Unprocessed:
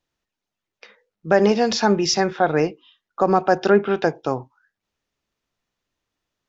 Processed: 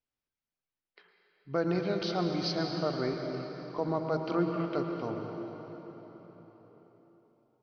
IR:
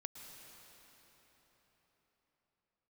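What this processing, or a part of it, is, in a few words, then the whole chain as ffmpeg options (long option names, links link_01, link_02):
slowed and reverbed: -filter_complex "[0:a]asetrate=37485,aresample=44100[link_01];[1:a]atrim=start_sample=2205[link_02];[link_01][link_02]afir=irnorm=-1:irlink=0,volume=-9dB"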